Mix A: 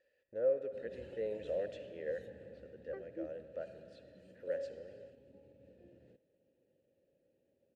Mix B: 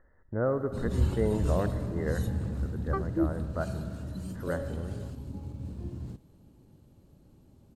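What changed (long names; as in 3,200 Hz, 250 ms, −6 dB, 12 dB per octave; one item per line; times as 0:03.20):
speech: add linear-phase brick-wall low-pass 2,100 Hz
master: remove formant filter e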